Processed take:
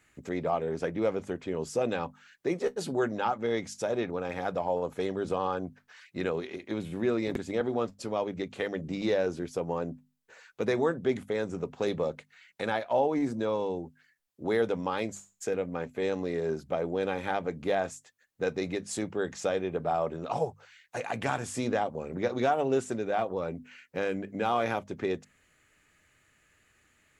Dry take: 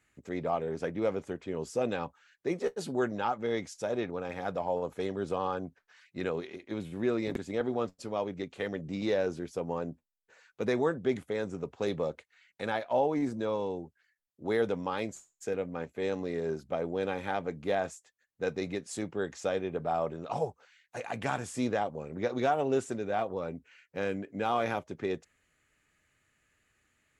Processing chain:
in parallel at +1 dB: downward compressor, threshold −41 dBFS, peak gain reduction 17 dB
on the sum: mains-hum notches 50/100/150/200/250 Hz

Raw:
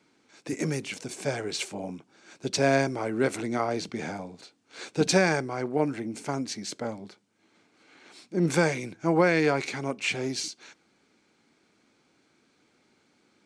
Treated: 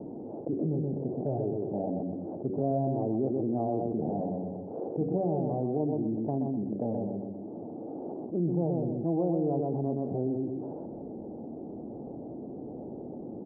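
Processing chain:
Butterworth low-pass 740 Hz 48 dB per octave
hum removal 94.78 Hz, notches 6
dynamic equaliser 530 Hz, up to −6 dB, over −39 dBFS, Q 2.4
on a send: repeating echo 126 ms, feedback 25%, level −6 dB
on the sum: envelope flattener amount 70%
level −6 dB

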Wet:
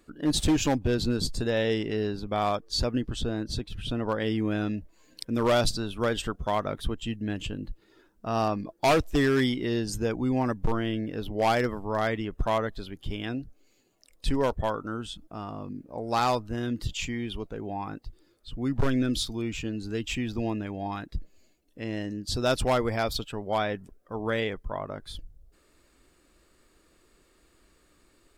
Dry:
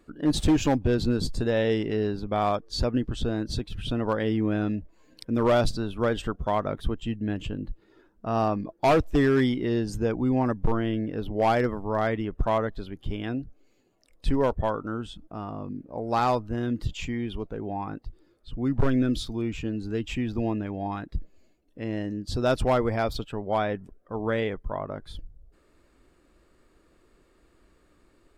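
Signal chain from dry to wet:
high-shelf EQ 2,600 Hz +8 dB, from 0:03.21 +3.5 dB, from 0:04.22 +11 dB
level −2.5 dB

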